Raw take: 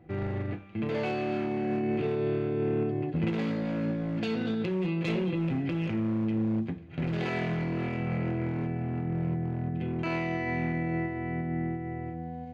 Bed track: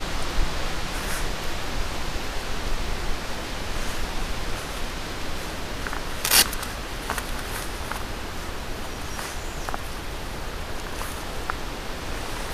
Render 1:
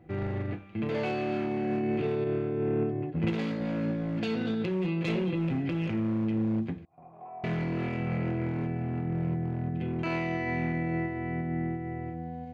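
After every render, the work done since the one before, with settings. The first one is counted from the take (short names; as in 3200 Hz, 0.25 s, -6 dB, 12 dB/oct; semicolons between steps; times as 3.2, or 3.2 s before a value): 2.24–3.61 three-band expander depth 100%; 6.85–7.44 vocal tract filter a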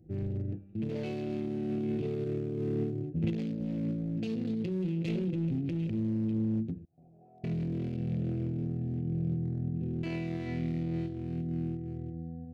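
Wiener smoothing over 41 samples; bell 1100 Hz -13.5 dB 1.9 oct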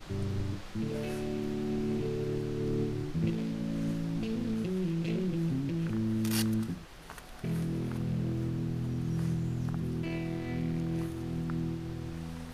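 add bed track -18.5 dB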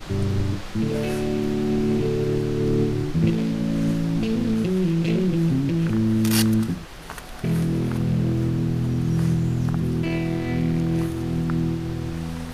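gain +10.5 dB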